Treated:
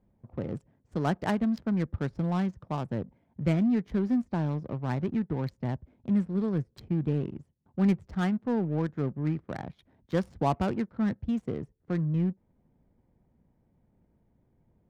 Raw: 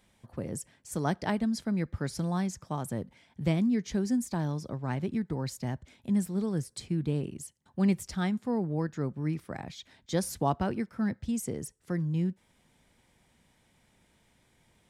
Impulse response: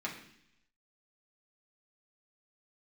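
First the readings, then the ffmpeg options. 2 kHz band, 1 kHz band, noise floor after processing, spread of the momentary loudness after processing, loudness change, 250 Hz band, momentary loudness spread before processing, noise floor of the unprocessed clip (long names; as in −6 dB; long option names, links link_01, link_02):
+0.5 dB, +1.0 dB, −71 dBFS, 11 LU, +1.5 dB, +2.0 dB, 11 LU, −68 dBFS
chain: -filter_complex "[0:a]asplit=2[link_01][link_02];[link_02]asoftclip=type=hard:threshold=-26dB,volume=-10.5dB[link_03];[link_01][link_03]amix=inputs=2:normalize=0,adynamicsmooth=sensitivity=6.5:basefreq=530"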